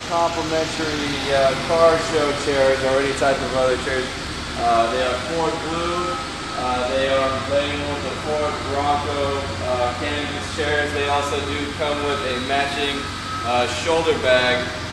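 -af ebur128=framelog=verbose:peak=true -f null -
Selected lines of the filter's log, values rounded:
Integrated loudness:
  I:         -20.7 LUFS
  Threshold: -30.7 LUFS
Loudness range:
  LRA:         3.4 LU
  Threshold: -41.0 LUFS
  LRA low:   -22.2 LUFS
  LRA high:  -18.7 LUFS
True peak:
  Peak:       -3.2 dBFS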